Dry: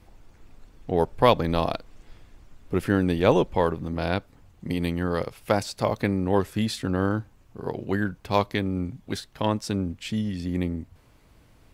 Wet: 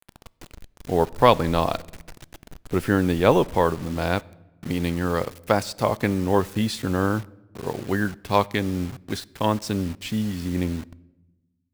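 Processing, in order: dynamic bell 1.2 kHz, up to +3 dB, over -36 dBFS, Q 1.3; bit crusher 7-bit; on a send: reverberation RT60 1.0 s, pre-delay 8 ms, DRR 22 dB; on the sum: trim +1.5 dB

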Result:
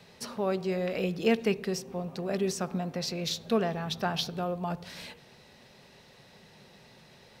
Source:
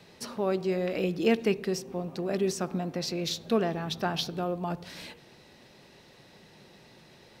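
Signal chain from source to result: peaking EQ 320 Hz -11.5 dB 0.25 oct

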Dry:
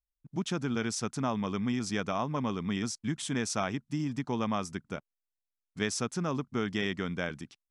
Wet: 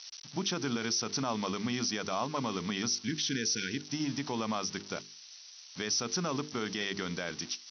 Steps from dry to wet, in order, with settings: zero-crossing glitches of -31.5 dBFS; Chebyshev low-pass 6 kHz, order 10; spectral replace 2.99–3.82 s, 490–1400 Hz; high-pass 84 Hz; tone controls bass -5 dB, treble +10 dB; hum notches 50/100/150/200/250/300/350/400/450 Hz; peak limiter -25.5 dBFS, peak gain reduction 10 dB; trim +3.5 dB

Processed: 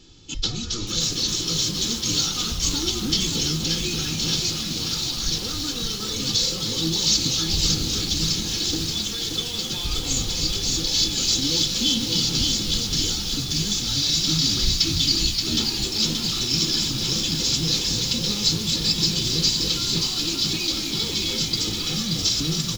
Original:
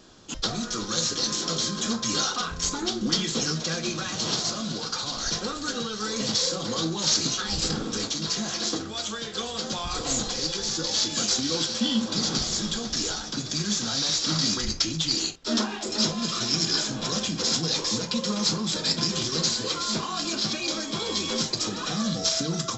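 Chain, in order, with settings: low-pass 3.2 kHz 6 dB/octave; high-order bell 840 Hz -15.5 dB 2.6 oct; hum notches 60/120 Hz; comb 2.3 ms, depth 68%; frequency-shifting echo 269 ms, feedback 47%, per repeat -110 Hz, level -8.5 dB; bit-crushed delay 578 ms, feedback 55%, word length 7-bit, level -4 dB; trim +6 dB

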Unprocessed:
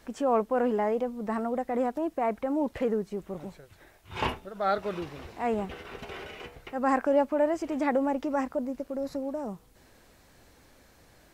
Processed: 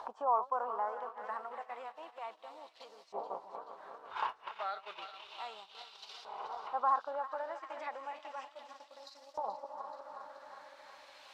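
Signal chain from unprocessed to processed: backward echo that repeats 182 ms, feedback 81%, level -10.5 dB; compression 3:1, threshold -42 dBFS, peak gain reduction 17 dB; gate -41 dBFS, range -13 dB; upward compressor, threshold -42 dBFS; graphic EQ 125/250/1000/2000/4000 Hz -6/-10/+9/-10/+7 dB; LFO band-pass saw up 0.32 Hz 830–5100 Hz; dynamic bell 2.4 kHz, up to -5 dB, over -58 dBFS, Q 0.83; on a send: feedback echo behind a high-pass 430 ms, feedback 62%, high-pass 3.3 kHz, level -10.5 dB; on the sum: trim +13 dB

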